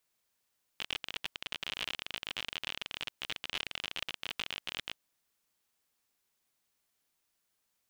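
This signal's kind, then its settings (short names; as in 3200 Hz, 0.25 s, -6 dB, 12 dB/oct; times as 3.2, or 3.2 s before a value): random clicks 43/s -19.5 dBFS 4.17 s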